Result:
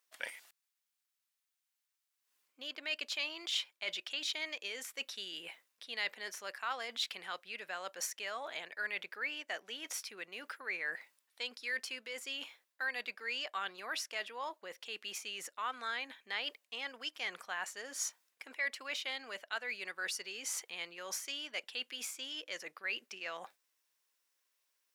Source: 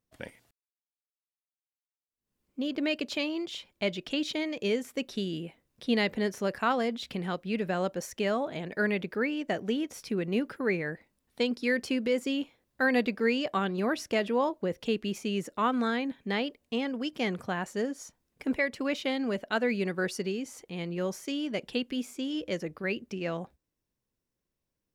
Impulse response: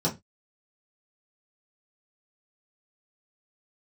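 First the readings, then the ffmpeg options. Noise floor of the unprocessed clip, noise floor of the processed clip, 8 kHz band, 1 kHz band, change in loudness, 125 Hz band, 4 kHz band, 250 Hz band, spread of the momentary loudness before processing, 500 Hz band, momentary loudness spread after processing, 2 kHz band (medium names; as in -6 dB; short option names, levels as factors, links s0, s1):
under -85 dBFS, under -85 dBFS, +4.0 dB, -9.5 dB, -8.5 dB, under -30 dB, -1.0 dB, -27.5 dB, 8 LU, -18.5 dB, 7 LU, -4.5 dB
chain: -af "areverse,acompressor=threshold=0.01:ratio=6,areverse,highpass=1200,volume=2.99"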